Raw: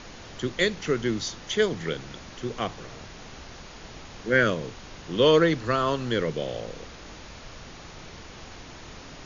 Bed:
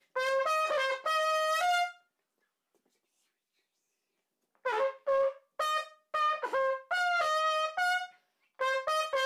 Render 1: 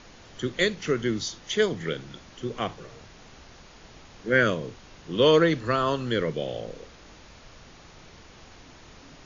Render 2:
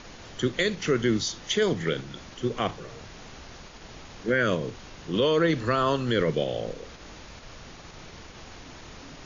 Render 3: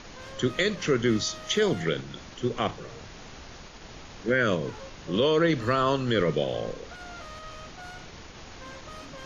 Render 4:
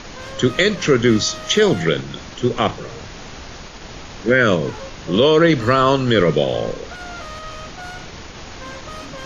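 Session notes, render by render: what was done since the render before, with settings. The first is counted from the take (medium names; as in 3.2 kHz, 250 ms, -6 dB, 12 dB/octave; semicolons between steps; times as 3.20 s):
noise print and reduce 6 dB
in parallel at -1.5 dB: level held to a coarse grid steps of 10 dB; on the sum: peak limiter -13.5 dBFS, peak gain reduction 10 dB
add bed -15.5 dB
trim +9.5 dB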